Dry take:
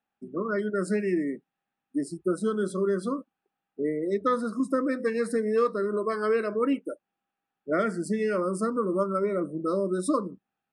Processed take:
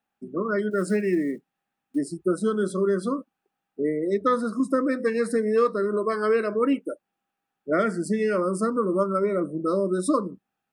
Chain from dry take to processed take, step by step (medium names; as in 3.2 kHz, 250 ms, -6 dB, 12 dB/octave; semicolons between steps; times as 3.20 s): 0.71–1.99 s: block-companded coder 7-bit; trim +3 dB